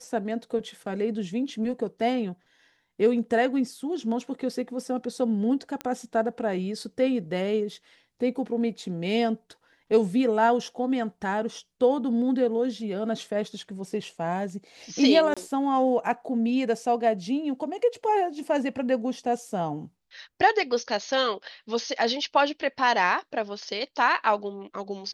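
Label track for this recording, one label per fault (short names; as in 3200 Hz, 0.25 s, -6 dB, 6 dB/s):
5.810000	5.810000	pop -17 dBFS
15.340000	15.370000	gap 26 ms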